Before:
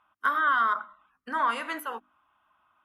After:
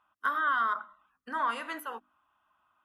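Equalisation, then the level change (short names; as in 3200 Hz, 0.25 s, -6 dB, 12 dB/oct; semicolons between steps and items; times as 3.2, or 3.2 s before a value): notch 2200 Hz, Q 15; -4.0 dB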